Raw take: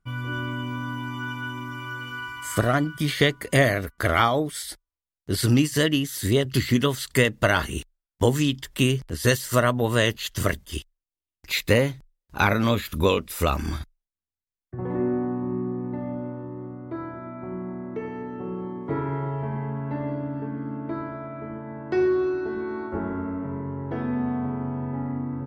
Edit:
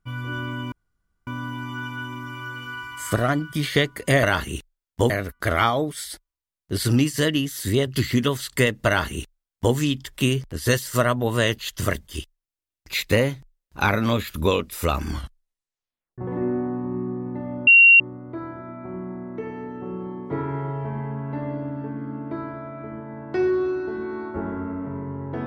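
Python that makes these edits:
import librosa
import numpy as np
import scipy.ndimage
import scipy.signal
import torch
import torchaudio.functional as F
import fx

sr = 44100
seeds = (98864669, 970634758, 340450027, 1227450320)

y = fx.edit(x, sr, fx.insert_room_tone(at_s=0.72, length_s=0.55),
    fx.duplicate(start_s=7.45, length_s=0.87, to_s=3.68),
    fx.tape_stop(start_s=13.67, length_s=1.09),
    fx.bleep(start_s=16.25, length_s=0.33, hz=2750.0, db=-8.0), tone=tone)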